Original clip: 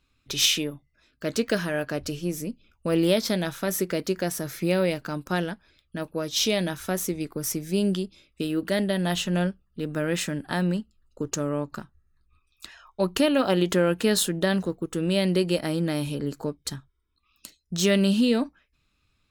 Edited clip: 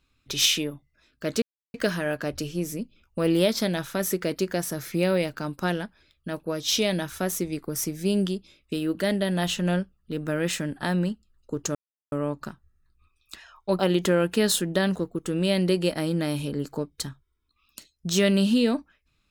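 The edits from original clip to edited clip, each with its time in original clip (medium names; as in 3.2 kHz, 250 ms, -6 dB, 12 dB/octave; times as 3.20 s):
1.42 s: insert silence 0.32 s
11.43 s: insert silence 0.37 s
13.10–13.46 s: delete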